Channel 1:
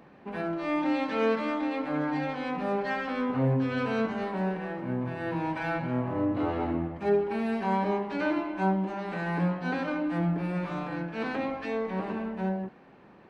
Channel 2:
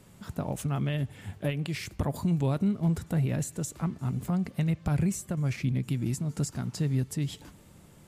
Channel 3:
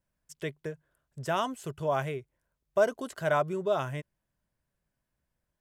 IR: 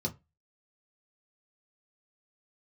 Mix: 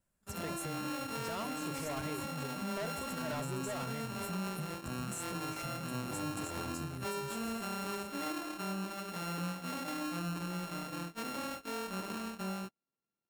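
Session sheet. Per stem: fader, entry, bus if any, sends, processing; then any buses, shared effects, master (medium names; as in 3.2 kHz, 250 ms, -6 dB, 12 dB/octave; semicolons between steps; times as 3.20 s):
-6.5 dB, 0.00 s, bus A, no send, sorted samples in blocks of 32 samples
+0.5 dB, 0.00 s, bus A, no send, resonant high shelf 6 kHz +11.5 dB, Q 1.5; compression 6:1, threshold -36 dBFS, peak gain reduction 13.5 dB; three-phase chorus
-1.5 dB, 0.00 s, no bus, no send, hard clipper -29.5 dBFS, distortion -6 dB; peak limiter -34 dBFS, peak gain reduction 4.5 dB
bus A: 0.0 dB, gate -41 dBFS, range -34 dB; compression 3:1, threshold -35 dBFS, peak gain reduction 7.5 dB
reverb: none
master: peak limiter -30 dBFS, peak gain reduction 5.5 dB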